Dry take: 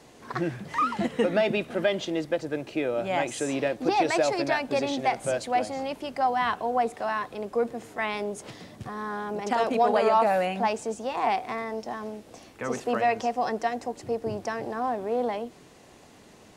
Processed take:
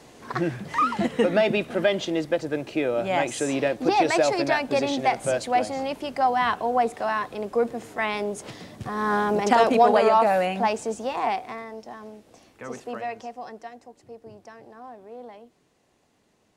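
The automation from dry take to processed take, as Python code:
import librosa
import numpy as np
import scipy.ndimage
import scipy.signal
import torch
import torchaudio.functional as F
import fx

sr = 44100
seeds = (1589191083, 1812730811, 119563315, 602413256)

y = fx.gain(x, sr, db=fx.line((8.8, 3.0), (9.14, 10.5), (10.18, 2.5), (11.08, 2.5), (11.71, -5.5), (12.74, -5.5), (13.88, -14.0)))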